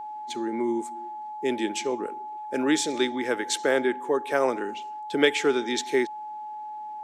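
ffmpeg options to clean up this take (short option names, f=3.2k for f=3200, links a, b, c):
-af "bandreject=f=850:w=30"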